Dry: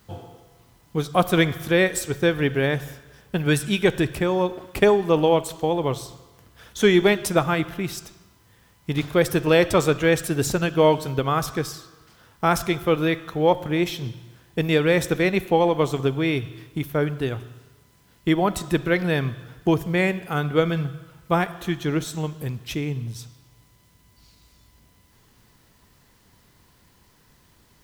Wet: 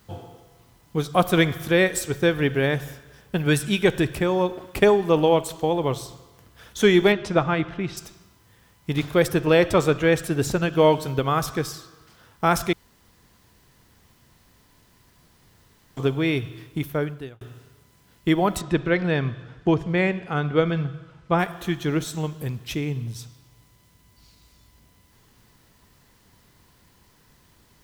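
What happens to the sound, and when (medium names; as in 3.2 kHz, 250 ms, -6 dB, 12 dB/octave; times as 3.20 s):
7.12–7.97 s: distance through air 140 m
9.28–10.73 s: treble shelf 4.3 kHz -5.5 dB
12.73–15.97 s: room tone
16.85–17.41 s: fade out
18.61–21.39 s: distance through air 110 m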